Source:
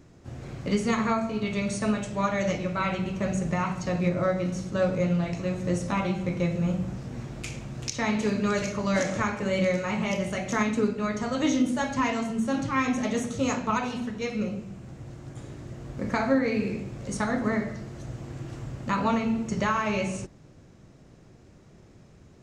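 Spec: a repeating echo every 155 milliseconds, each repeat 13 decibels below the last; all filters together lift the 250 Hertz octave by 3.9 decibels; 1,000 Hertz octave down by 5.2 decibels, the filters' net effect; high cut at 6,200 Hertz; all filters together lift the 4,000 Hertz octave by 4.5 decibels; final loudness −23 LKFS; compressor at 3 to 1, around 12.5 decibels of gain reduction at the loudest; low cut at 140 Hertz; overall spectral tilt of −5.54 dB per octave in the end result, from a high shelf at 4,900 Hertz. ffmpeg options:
ffmpeg -i in.wav -af "highpass=140,lowpass=6200,equalizer=frequency=250:width_type=o:gain=6,equalizer=frequency=1000:width_type=o:gain=-7.5,equalizer=frequency=4000:width_type=o:gain=4,highshelf=frequency=4900:gain=6.5,acompressor=threshold=-31dB:ratio=3,aecho=1:1:155|310|465:0.224|0.0493|0.0108,volume=10dB" out.wav

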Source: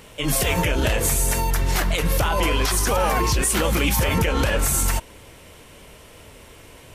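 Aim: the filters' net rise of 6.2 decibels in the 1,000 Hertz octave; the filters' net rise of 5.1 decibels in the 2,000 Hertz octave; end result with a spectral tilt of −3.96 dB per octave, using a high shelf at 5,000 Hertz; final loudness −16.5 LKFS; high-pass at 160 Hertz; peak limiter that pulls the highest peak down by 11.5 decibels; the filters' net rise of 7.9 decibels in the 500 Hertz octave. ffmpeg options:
ffmpeg -i in.wav -af "highpass=160,equalizer=frequency=500:width_type=o:gain=8,equalizer=frequency=1000:width_type=o:gain=4,equalizer=frequency=2000:width_type=o:gain=6,highshelf=frequency=5000:gain=-6.5,volume=7.5dB,alimiter=limit=-8dB:level=0:latency=1" out.wav

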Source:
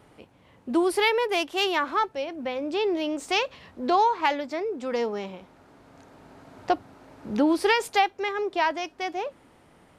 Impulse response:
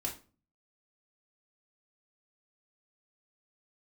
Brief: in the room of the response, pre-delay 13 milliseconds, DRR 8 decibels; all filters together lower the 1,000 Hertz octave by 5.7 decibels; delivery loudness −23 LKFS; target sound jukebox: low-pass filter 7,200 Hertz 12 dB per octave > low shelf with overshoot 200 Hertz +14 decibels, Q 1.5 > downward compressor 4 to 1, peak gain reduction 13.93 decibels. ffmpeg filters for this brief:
-filter_complex "[0:a]equalizer=frequency=1000:width_type=o:gain=-6.5,asplit=2[link_01][link_02];[1:a]atrim=start_sample=2205,adelay=13[link_03];[link_02][link_03]afir=irnorm=-1:irlink=0,volume=-9.5dB[link_04];[link_01][link_04]amix=inputs=2:normalize=0,lowpass=7200,lowshelf=frequency=200:width_type=q:width=1.5:gain=14,acompressor=threshold=-34dB:ratio=4,volume=14.5dB"

